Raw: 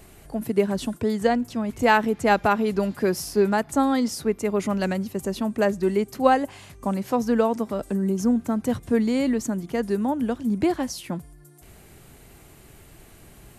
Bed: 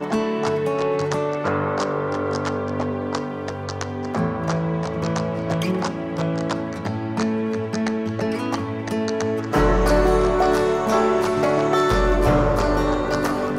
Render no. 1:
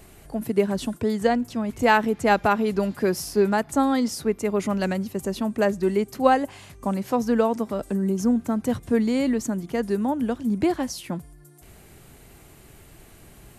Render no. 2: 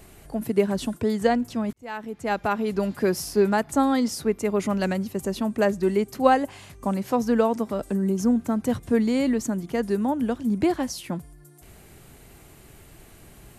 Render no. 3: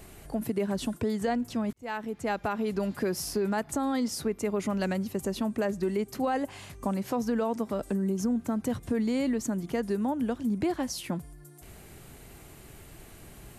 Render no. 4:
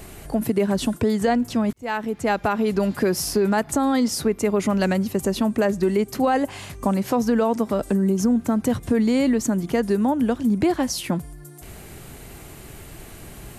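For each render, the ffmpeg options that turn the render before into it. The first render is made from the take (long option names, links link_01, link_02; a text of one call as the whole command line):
ffmpeg -i in.wav -af anull out.wav
ffmpeg -i in.wav -filter_complex "[0:a]asplit=2[link_01][link_02];[link_01]atrim=end=1.73,asetpts=PTS-STARTPTS,afade=type=out:start_time=1.726:duration=0.004:curve=hsin[link_03];[link_02]atrim=start=1.73,asetpts=PTS-STARTPTS,afade=type=in:duration=1.25[link_04];[link_03][link_04]concat=n=2:v=0:a=1" out.wav
ffmpeg -i in.wav -af "alimiter=limit=-15dB:level=0:latency=1:release=21,acompressor=threshold=-29dB:ratio=2" out.wav
ffmpeg -i in.wav -af "volume=8.5dB" out.wav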